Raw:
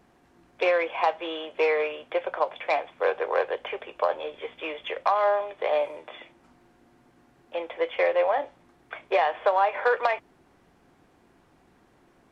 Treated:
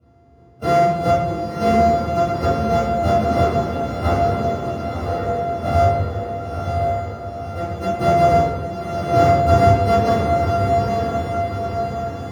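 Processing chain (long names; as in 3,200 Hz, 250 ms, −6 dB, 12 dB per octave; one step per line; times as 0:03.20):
samples sorted by size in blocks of 64 samples
harmonic generator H 7 −31 dB, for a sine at −9.5 dBFS
0:04.69–0:05.55: formant resonators in series e
feedback delay with all-pass diffusion 985 ms, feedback 57%, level −4 dB
convolution reverb RT60 1.1 s, pre-delay 3 ms, DRR −15.5 dB
level −15 dB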